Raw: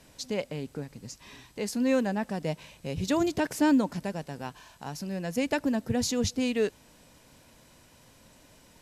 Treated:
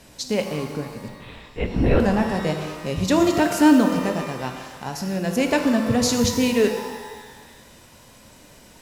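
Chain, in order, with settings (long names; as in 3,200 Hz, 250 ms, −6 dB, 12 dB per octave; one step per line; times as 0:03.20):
0:01.08–0:02.00: linear-prediction vocoder at 8 kHz whisper
reverb with rising layers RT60 1.4 s, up +12 semitones, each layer −8 dB, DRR 4.5 dB
level +7 dB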